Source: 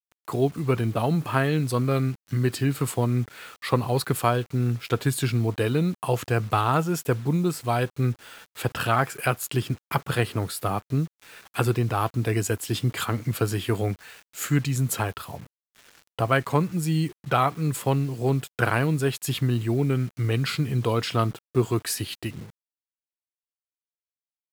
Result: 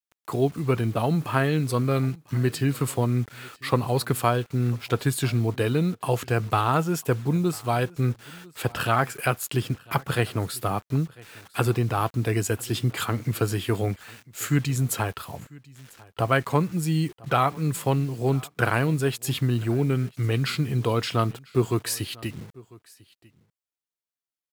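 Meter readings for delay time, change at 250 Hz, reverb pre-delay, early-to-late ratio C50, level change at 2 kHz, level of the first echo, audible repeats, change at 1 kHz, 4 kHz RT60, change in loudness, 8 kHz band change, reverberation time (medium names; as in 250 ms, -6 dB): 997 ms, 0.0 dB, no reverb, no reverb, 0.0 dB, -23.5 dB, 1, 0.0 dB, no reverb, 0.0 dB, 0.0 dB, no reverb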